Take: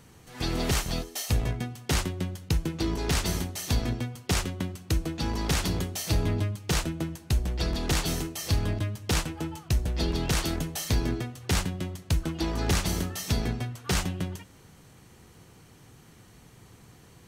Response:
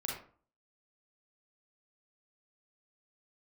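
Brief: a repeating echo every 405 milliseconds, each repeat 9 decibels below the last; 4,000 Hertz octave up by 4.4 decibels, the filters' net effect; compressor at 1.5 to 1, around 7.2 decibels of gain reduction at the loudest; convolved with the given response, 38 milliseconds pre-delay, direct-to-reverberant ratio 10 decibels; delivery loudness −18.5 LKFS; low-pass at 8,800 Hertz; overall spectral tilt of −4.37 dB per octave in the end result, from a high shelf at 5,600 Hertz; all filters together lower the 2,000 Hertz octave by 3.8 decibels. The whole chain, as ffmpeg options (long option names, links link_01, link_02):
-filter_complex "[0:a]lowpass=8800,equalizer=frequency=2000:width_type=o:gain=-7.5,equalizer=frequency=4000:width_type=o:gain=9,highshelf=frequency=5600:gain=-3.5,acompressor=threshold=-41dB:ratio=1.5,aecho=1:1:405|810|1215|1620:0.355|0.124|0.0435|0.0152,asplit=2[link_01][link_02];[1:a]atrim=start_sample=2205,adelay=38[link_03];[link_02][link_03]afir=irnorm=-1:irlink=0,volume=-12dB[link_04];[link_01][link_04]amix=inputs=2:normalize=0,volume=15.5dB"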